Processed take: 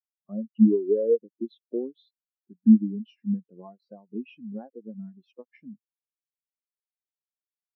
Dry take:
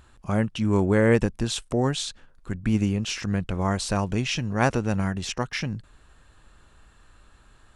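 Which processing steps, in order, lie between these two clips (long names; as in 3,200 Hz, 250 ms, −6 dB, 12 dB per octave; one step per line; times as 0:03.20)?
Chebyshev band-pass filter 290–4,700 Hz, order 2
downward compressor 5 to 1, threshold −29 dBFS, peak gain reduction 12.5 dB
every bin expanded away from the loudest bin 4 to 1
level +9 dB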